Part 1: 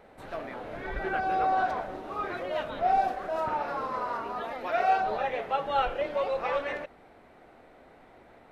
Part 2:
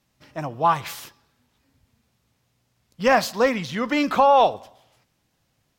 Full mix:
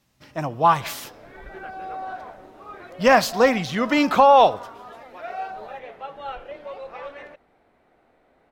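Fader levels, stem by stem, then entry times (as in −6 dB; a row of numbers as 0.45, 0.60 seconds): −7.0, +2.5 decibels; 0.50, 0.00 seconds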